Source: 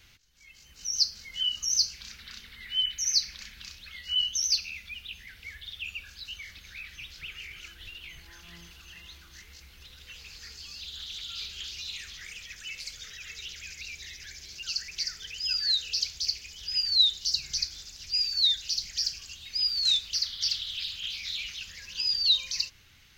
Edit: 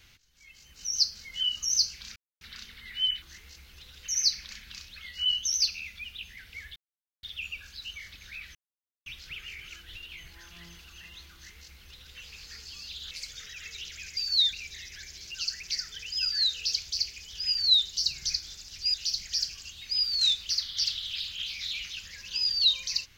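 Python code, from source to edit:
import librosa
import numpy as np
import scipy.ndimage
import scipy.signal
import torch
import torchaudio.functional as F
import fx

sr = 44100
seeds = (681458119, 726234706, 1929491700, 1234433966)

y = fx.edit(x, sr, fx.insert_silence(at_s=2.16, length_s=0.25),
    fx.insert_silence(at_s=5.66, length_s=0.47),
    fx.insert_silence(at_s=6.98, length_s=0.51),
    fx.duplicate(start_s=9.26, length_s=0.85, to_s=2.97),
    fx.cut(start_s=11.03, length_s=1.72),
    fx.move(start_s=18.22, length_s=0.36, to_s=13.81), tone=tone)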